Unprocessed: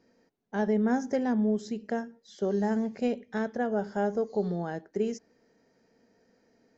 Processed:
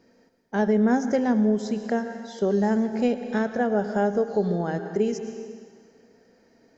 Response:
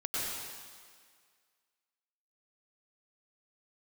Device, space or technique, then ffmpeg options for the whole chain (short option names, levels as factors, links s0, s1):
ducked reverb: -filter_complex "[0:a]asplit=3[s0][s1][s2];[1:a]atrim=start_sample=2205[s3];[s1][s3]afir=irnorm=-1:irlink=0[s4];[s2]apad=whole_len=298593[s5];[s4][s5]sidechaincompress=threshold=0.0251:ratio=8:attack=48:release=313,volume=0.299[s6];[s0][s6]amix=inputs=2:normalize=0,volume=1.68"